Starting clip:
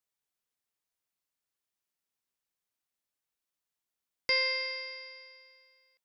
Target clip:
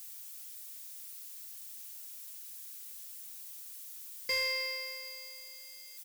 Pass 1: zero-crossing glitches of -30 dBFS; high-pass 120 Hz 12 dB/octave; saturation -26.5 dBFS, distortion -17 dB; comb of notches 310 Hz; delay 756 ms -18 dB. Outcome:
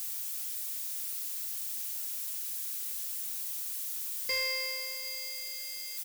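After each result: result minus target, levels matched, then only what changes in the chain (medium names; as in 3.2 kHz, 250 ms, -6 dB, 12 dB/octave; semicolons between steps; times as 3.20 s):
zero-crossing glitches: distortion +11 dB; echo-to-direct +9 dB
change: zero-crossing glitches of -41 dBFS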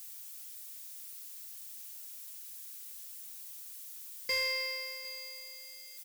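echo-to-direct +9 dB
change: delay 756 ms -27 dB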